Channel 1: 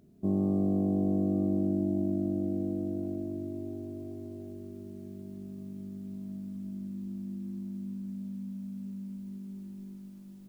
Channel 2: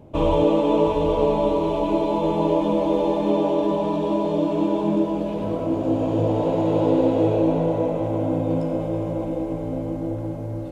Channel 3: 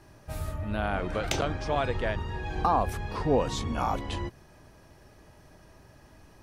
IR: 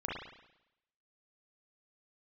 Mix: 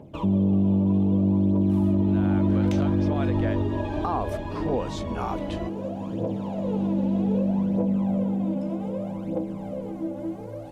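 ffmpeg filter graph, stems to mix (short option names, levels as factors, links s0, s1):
-filter_complex "[0:a]adynamicequalizer=threshold=0.01:dfrequency=130:dqfactor=0.86:tfrequency=130:tqfactor=0.86:attack=5:release=100:ratio=0.375:range=2:mode=boostabove:tftype=bell,agate=range=0.398:threshold=0.0141:ratio=16:detection=peak,bass=f=250:g=11,treble=f=4000:g=-14,volume=0.944[s0];[1:a]highpass=f=200:p=1,acompressor=threshold=0.0398:ratio=6,aphaser=in_gain=1:out_gain=1:delay=3.6:decay=0.65:speed=0.64:type=triangular,volume=0.299[s1];[2:a]highshelf=f=4800:g=-6,adelay=1400,volume=0.376[s2];[s0][s1][s2]amix=inputs=3:normalize=0,acontrast=78,alimiter=limit=0.168:level=0:latency=1:release=99"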